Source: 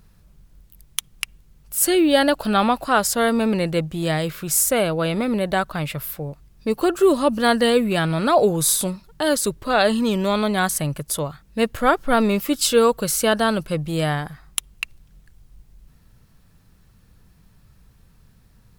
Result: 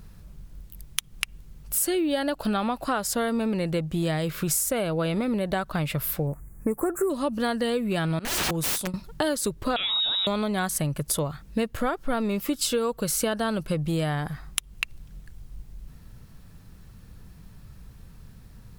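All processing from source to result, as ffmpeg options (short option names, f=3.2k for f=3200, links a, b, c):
-filter_complex "[0:a]asettb=1/sr,asplit=3[a][b][c];[a]atrim=end=6.274[d];[b]atrim=start=6.27:end=7.1,asetpts=PTS-STARTPTS,afade=t=in:d=0.004:c=qsin,afade=t=out:st=0.826:d=0.004:c=qsin,asuperstop=centerf=3900:order=8:qfactor=0.77,highshelf=f=5.9k:g=9.5[e];[c]atrim=start=7.096[f];[d][e]acrossfade=d=0.004:c1=hsin:c2=qsin[g];[g][f]acrossfade=d=0.004:c1=qsin:c2=hsin,asettb=1/sr,asplit=3[h][i][j];[h]atrim=end=8.194[k];[i]atrim=start=8.19:end=8.94,asetpts=PTS-STARTPTS,afade=t=in:d=0.004:c=qsin,afade=t=out:st=0.746:d=0.004:c=qsin,agate=range=-33dB:threshold=-15dB:ratio=3:release=100:detection=peak,aeval=exprs='(mod(15*val(0)+1,2)-1)/15':c=same[l];[j]atrim=start=8.936[m];[k][l]acrossfade=d=0.004:c1=hsin:c2=qsin[n];[n][m]acrossfade=d=0.004:c1=qsin:c2=hsin,asettb=1/sr,asplit=3[o][p][q];[o]atrim=end=9.764[r];[p]atrim=start=9.76:end=10.27,asetpts=PTS-STARTPTS,afade=t=in:d=0.004:c=qsin,afade=t=out:st=0.506:d=0.004:c=qsin,acompressor=threshold=-18dB:ratio=4:attack=3.2:release=140:knee=1:detection=peak,lowpass=f=3.4k:t=q:w=0.5098,lowpass=f=3.4k:t=q:w=0.6013,lowpass=f=3.4k:t=q:w=0.9,lowpass=f=3.4k:t=q:w=2.563,afreqshift=-4000[s];[q]atrim=start=10.266[t];[r][s]acrossfade=d=0.004:c1=hsin:c2=qsin[u];[u][t]acrossfade=d=0.004:c1=qsin:c2=hsin,lowshelf=f=400:g=3.5,acompressor=threshold=-26dB:ratio=12,volume=3.5dB"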